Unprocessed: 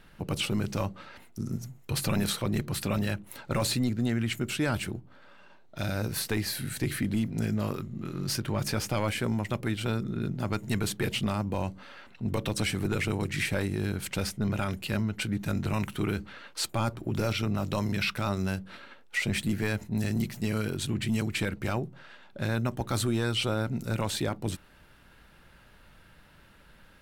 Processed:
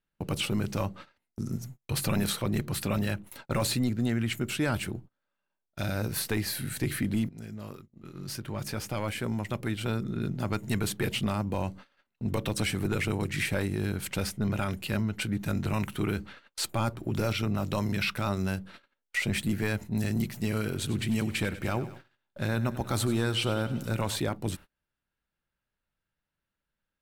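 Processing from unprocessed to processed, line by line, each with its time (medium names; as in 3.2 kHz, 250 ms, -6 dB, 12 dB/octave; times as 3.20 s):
7.29–10.19 s: fade in, from -14.5 dB
20.31–24.20 s: bit-crushed delay 96 ms, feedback 55%, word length 10-bit, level -14.5 dB
whole clip: treble shelf 3.8 kHz +2.5 dB; gate -43 dBFS, range -31 dB; dynamic bell 5.7 kHz, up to -3 dB, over -47 dBFS, Q 0.73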